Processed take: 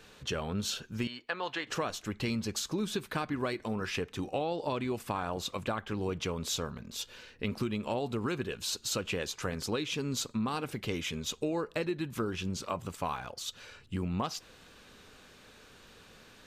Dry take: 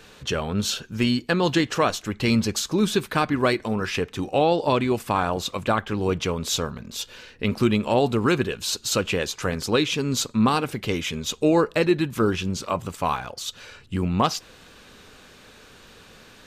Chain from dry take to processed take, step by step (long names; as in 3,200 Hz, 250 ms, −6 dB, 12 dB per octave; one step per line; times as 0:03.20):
0:01.07–0:01.67: three-way crossover with the lows and the highs turned down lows −20 dB, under 530 Hz, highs −15 dB, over 3,600 Hz
downward compressor, threshold −22 dBFS, peak gain reduction 8.5 dB
level −7 dB